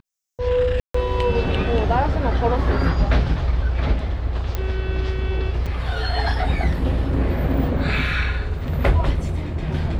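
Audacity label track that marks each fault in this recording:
0.800000	0.940000	drop-out 144 ms
4.550000	4.550000	click −10 dBFS
5.660000	5.670000	drop-out 5.2 ms

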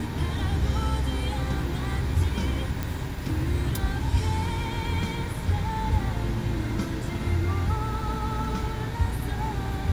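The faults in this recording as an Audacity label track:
2.830000	2.830000	click

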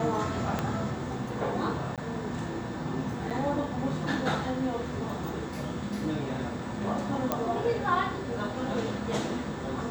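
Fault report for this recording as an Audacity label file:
0.590000	0.590000	click −15 dBFS
1.960000	1.980000	drop-out 17 ms
3.300000	3.310000	drop-out 6.8 ms
7.320000	7.320000	click −12 dBFS

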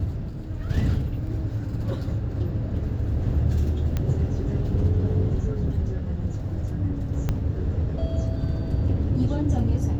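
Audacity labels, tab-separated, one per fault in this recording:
1.270000	1.270000	drop-out 2.4 ms
3.970000	3.970000	click −14 dBFS
7.290000	7.290000	click −13 dBFS

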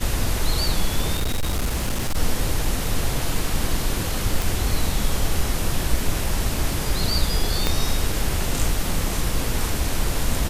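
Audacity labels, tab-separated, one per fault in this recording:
1.140000	2.170000	clipping −18.5 dBFS
4.420000	4.420000	click
7.670000	7.670000	click −5 dBFS

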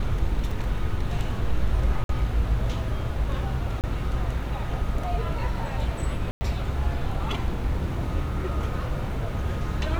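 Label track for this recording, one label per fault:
0.510000	0.510000	drop-out 4.1 ms
2.040000	2.090000	drop-out 52 ms
3.810000	3.840000	drop-out 28 ms
6.310000	6.410000	drop-out 100 ms

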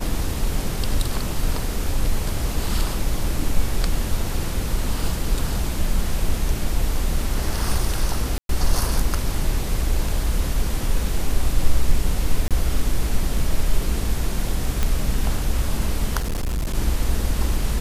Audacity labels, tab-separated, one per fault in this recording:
8.380000	8.490000	drop-out 112 ms
12.480000	12.510000	drop-out 27 ms
14.830000	14.830000	click −7 dBFS
16.180000	16.750000	clipping −20.5 dBFS

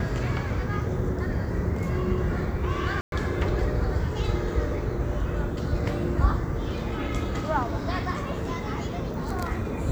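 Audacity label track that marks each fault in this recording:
3.010000	3.120000	drop-out 112 ms

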